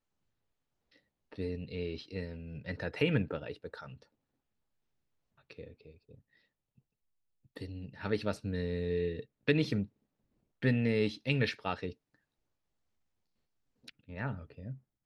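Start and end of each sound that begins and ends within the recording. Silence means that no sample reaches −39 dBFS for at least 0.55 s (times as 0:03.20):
0:01.33–0:03.89
0:05.51–0:05.64
0:07.57–0:09.84
0:10.62–0:11.92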